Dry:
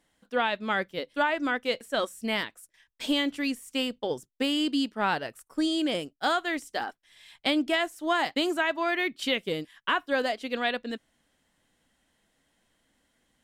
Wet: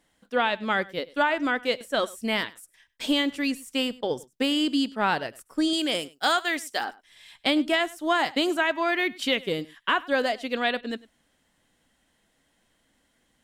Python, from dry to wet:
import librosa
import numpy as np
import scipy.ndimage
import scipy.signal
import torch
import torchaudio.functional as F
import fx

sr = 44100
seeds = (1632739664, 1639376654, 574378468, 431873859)

y = fx.tilt_eq(x, sr, slope=2.0, at=(5.73, 6.85))
y = y + 10.0 ** (-21.5 / 20.0) * np.pad(y, (int(100 * sr / 1000.0), 0))[:len(y)]
y = F.gain(torch.from_numpy(y), 2.5).numpy()